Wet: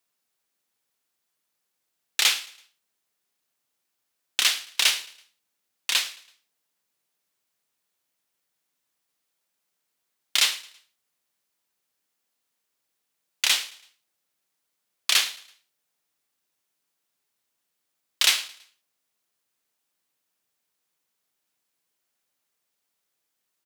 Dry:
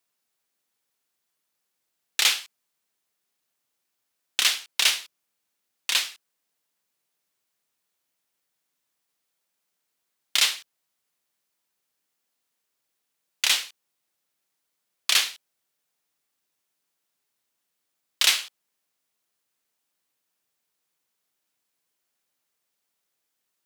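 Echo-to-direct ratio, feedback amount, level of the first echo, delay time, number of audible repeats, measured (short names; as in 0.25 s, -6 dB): -20.0 dB, 42%, -21.0 dB, 0.11 s, 2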